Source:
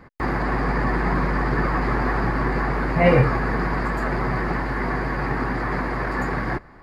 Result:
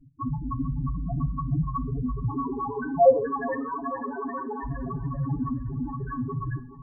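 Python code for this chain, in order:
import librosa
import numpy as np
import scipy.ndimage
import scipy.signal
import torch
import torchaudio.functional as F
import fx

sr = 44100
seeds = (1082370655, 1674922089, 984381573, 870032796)

y = fx.highpass(x, sr, hz=220.0, slope=24, at=(2.29, 4.64))
y = y + 0.81 * np.pad(y, (int(7.2 * sr / 1000.0), 0))[:len(y)]
y = fx.spec_topn(y, sr, count=2)
y = fx.echo_feedback(y, sr, ms=427, feedback_pct=55, wet_db=-16.0)
y = fx.rev_gated(y, sr, seeds[0], gate_ms=170, shape='falling', drr_db=10.5)
y = y * 10.0 ** (1.0 / 20.0)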